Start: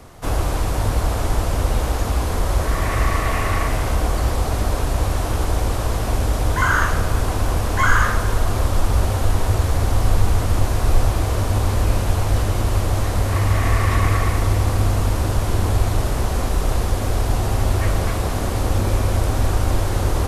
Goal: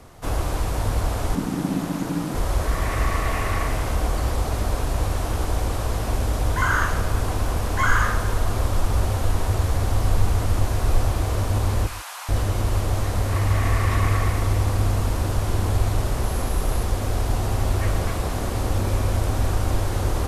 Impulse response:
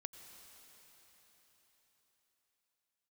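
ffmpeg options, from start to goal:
-filter_complex "[0:a]asettb=1/sr,asplit=3[a][b][c];[a]atrim=end=1.354[d];[b]atrim=start=1.35:end=2.35,asetpts=PTS-STARTPTS,afade=t=in:d=0.004:c=qsin,afade=t=out:st=0.996:d=0.004:c=qsin,aeval=exprs='val(0)*sin(2*PI*230*n/s)':c=same[e];[c]atrim=start=2.346[f];[d][e]acrossfade=d=0.004:c1=hsin:c2=qsin[g];[g][f]acrossfade=d=0.004:c1=qsin:c2=hsin,asettb=1/sr,asplit=3[h][i][j];[h]atrim=end=11.874[k];[i]atrim=start=11.87:end=12.29,asetpts=PTS-STARTPTS,afade=t=in:d=0.004:c=qsin,afade=t=out:st=0.416:d=0.004:c=qsin,highpass=f=930:w=0.5412,highpass=f=930:w=1.3066[l];[j]atrim=start=12.286[m];[k][l]acrossfade=d=0.004:c1=hsin:c2=qsin[n];[n][m]acrossfade=d=0.004:c1=qsin:c2=hsin,asettb=1/sr,asplit=3[o][p][q];[o]atrim=end=16.234[r];[p]atrim=start=16.23:end=16.83,asetpts=PTS-STARTPTS,afade=t=in:d=0.004:c=qsin,afade=t=out:st=0.596:d=0.004:c=qsin,equalizer=f=11k:w=7.1:g=10[s];[q]atrim=start=16.826[t];[r][s]acrossfade=d=0.004:c1=hsin:c2=qsin[u];[u][t]acrossfade=d=0.004:c1=qsin:c2=hsin[v];[1:a]atrim=start_sample=2205,afade=t=out:st=0.16:d=0.01,atrim=end_sample=7497,asetrate=32634,aresample=44100[w];[v][w]afir=irnorm=-1:irlink=0"

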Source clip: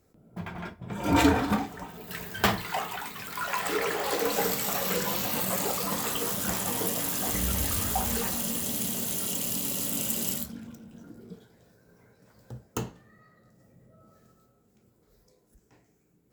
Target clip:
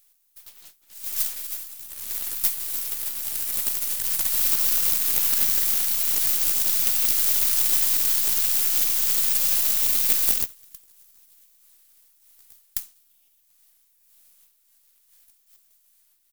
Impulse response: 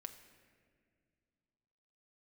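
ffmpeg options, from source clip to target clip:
-filter_complex "[0:a]aderivative,asplit=2[a][b];[b]acompressor=threshold=-36dB:ratio=8,volume=0.5dB[c];[a][c]amix=inputs=2:normalize=0,asplit=2[d][e];[e]asetrate=37084,aresample=44100,atempo=1.18921,volume=0dB[f];[d][f]amix=inputs=2:normalize=0,aeval=exprs='abs(val(0))':c=same,crystalizer=i=5.5:c=0,volume=-12dB"

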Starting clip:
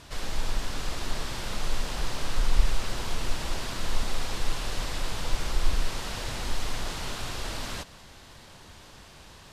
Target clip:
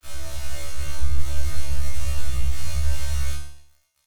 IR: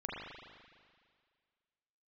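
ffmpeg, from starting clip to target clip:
-filter_complex "[0:a]acrossover=split=6500[a][b];[b]acompressor=threshold=-60dB:ratio=4:attack=1:release=60[c];[a][c]amix=inputs=2:normalize=0,aeval=exprs='val(0)*gte(abs(val(0)),0.0112)':c=same,lowshelf=f=180:g=-9,acompressor=threshold=-28dB:ratio=6,asoftclip=type=tanh:threshold=-39dB,aeval=exprs='0.0112*(cos(1*acos(clip(val(0)/0.0112,-1,1)))-cos(1*PI/2))+0.000891*(cos(2*acos(clip(val(0)/0.0112,-1,1)))-cos(2*PI/2))+0.000891*(cos(4*acos(clip(val(0)/0.0112,-1,1)))-cos(4*PI/2))+0.000891*(cos(6*acos(clip(val(0)/0.0112,-1,1)))-cos(6*PI/2))':c=same,asplit=5[d][e][f][g][h];[e]adelay=155,afreqshift=140,volume=-14dB[i];[f]adelay=310,afreqshift=280,volume=-22.6dB[j];[g]adelay=465,afreqshift=420,volume=-31.3dB[k];[h]adelay=620,afreqshift=560,volume=-39.9dB[l];[d][i][j][k][l]amix=inputs=5:normalize=0[m];[1:a]atrim=start_sample=2205,asetrate=57330,aresample=44100[n];[m][n]afir=irnorm=-1:irlink=0,asubboost=boost=6:cutoff=67,asplit=2[o][p];[p]adelay=33,volume=-5dB[q];[o][q]amix=inputs=2:normalize=0,asetrate=103194,aresample=44100,afftfilt=real='re*1.73*eq(mod(b,3),0)':imag='im*1.73*eq(mod(b,3),0)':win_size=2048:overlap=0.75,volume=7.5dB"

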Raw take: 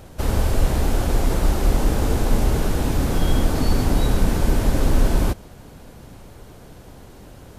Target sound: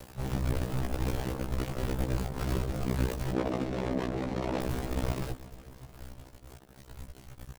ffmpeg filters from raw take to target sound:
-filter_complex "[0:a]afwtdn=0.0631,acompressor=mode=upward:threshold=-29dB:ratio=2.5,aeval=exprs='val(0)*sin(2*PI*31*n/s)':c=same,acrusher=bits=5:dc=4:mix=0:aa=0.000001,asettb=1/sr,asplit=3[a][b][c];[a]atrim=end=3.334[d];[b]atrim=start=3.33:end=4.62,asetpts=PTS-STARTPTS,afade=t=in:d=0.004:c=qsin,afade=t=out:st=1.286:d=0.004:c=qsin,bandpass=f=610:t=q:w=0.59:csg=0[e];[c]atrim=start=4.616[f];[d][e]acrossfade=d=0.004:c1=hsin:c2=qsin[g];[g][f]acrossfade=d=0.004:c1=qsin:c2=hsin,volume=25.5dB,asoftclip=hard,volume=-25.5dB,aeval=exprs='val(0)*sin(2*PI*32*n/s)':c=same,aecho=1:1:361|722|1083|1444|1805:0.106|0.0614|0.0356|0.0207|0.012,afftfilt=real='re*1.73*eq(mod(b,3),0)':imag='im*1.73*eq(mod(b,3),0)':win_size=2048:overlap=0.75,volume=5dB"

